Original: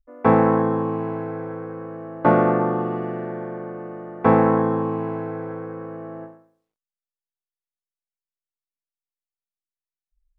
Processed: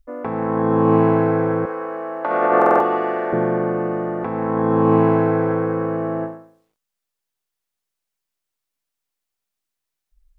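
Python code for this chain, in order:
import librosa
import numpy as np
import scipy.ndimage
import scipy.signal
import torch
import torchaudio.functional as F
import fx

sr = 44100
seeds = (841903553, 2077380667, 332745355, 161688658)

y = fx.highpass(x, sr, hz=540.0, slope=12, at=(1.65, 3.33))
y = fx.over_compress(y, sr, threshold_db=-25.0, ratio=-1.0)
y = fx.buffer_glitch(y, sr, at_s=(2.57,), block=2048, repeats=4)
y = y * 10.0 ** (8.0 / 20.0)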